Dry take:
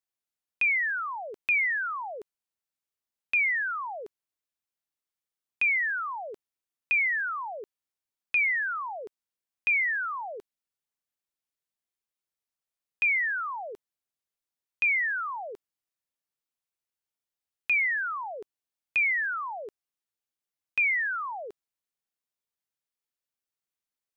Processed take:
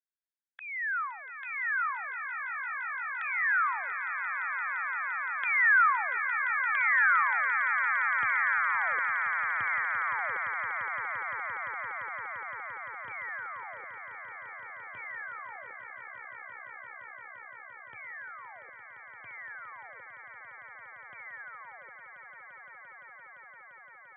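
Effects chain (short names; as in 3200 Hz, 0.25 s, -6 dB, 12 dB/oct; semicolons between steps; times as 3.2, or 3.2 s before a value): Doppler pass-by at 5.52, 13 m/s, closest 14 m; high-pass sweep 1300 Hz -> 110 Hz, 7.5–8.18; in parallel at +1.5 dB: compressor, threshold -34 dBFS, peak gain reduction 13 dB; on the sum: formant shift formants +5 st; steep low-pass 1900 Hz 36 dB/oct; on a send: swelling echo 0.172 s, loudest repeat 8, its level -10 dB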